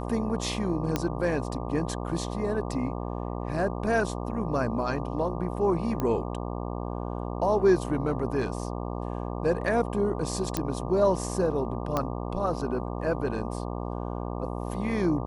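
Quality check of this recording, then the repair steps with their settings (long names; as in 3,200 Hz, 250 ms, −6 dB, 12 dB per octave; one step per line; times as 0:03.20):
mains buzz 60 Hz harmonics 20 −33 dBFS
0:00.96: click −11 dBFS
0:06.00: click −16 dBFS
0:10.57: click −11 dBFS
0:11.97: click −13 dBFS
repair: click removal
hum removal 60 Hz, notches 20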